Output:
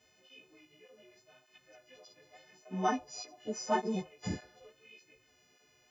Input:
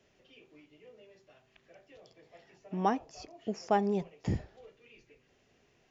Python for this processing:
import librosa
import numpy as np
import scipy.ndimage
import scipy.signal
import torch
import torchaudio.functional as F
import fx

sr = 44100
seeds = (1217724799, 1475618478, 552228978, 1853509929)

y = fx.freq_snap(x, sr, grid_st=3)
y = fx.flanger_cancel(y, sr, hz=1.7, depth_ms=6.2)